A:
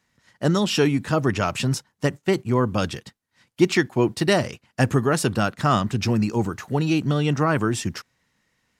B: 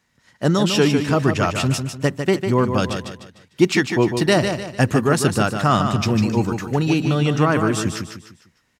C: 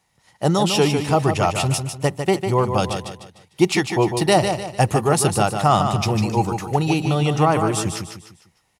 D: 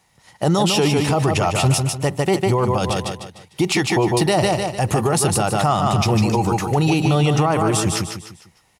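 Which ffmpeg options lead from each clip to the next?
-af "aecho=1:1:150|300|450|600:0.447|0.17|0.0645|0.0245,volume=1.33"
-af "equalizer=f=250:t=o:w=0.33:g=-11,equalizer=f=800:t=o:w=0.33:g=10,equalizer=f=1600:t=o:w=0.33:g=-9,equalizer=f=10000:t=o:w=0.33:g=10"
-af "alimiter=level_in=5.31:limit=0.891:release=50:level=0:latency=1,volume=0.398"

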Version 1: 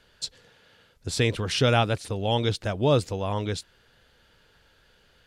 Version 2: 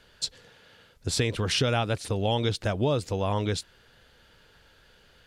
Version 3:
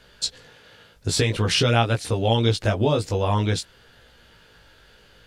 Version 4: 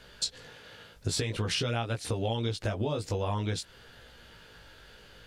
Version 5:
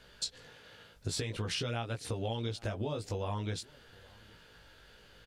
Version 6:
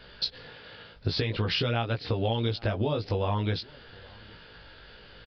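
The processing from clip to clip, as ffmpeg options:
-af "acompressor=threshold=0.0631:ratio=6,volume=1.33"
-af "flanger=delay=17:depth=2:speed=0.5,volume=2.51"
-af "acompressor=threshold=0.0398:ratio=6"
-filter_complex "[0:a]asplit=2[s0][s1];[s1]adelay=816.3,volume=0.0562,highshelf=f=4000:g=-18.4[s2];[s0][s2]amix=inputs=2:normalize=0,volume=0.562"
-af "aresample=11025,aresample=44100,volume=2.51"

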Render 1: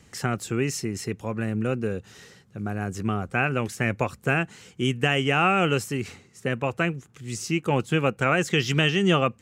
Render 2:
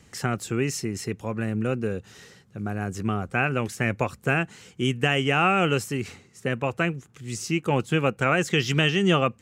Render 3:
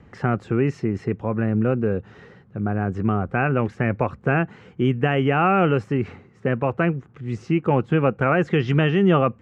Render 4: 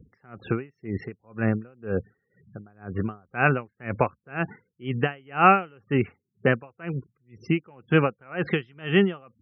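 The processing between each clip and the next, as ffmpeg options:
-af anull
-filter_complex "[0:a]lowpass=1500,asplit=2[s0][s1];[s1]alimiter=limit=0.119:level=0:latency=1,volume=1.12[s2];[s0][s2]amix=inputs=2:normalize=0"
-af "afftfilt=real='re*gte(hypot(re,im),0.00891)':imag='im*gte(hypot(re,im),0.00891)':win_size=1024:overlap=0.75,tiltshelf=f=740:g=-4,aeval=exprs='val(0)*pow(10,-35*(0.5-0.5*cos(2*PI*2*n/s))/20)':c=same,volume=1.58"

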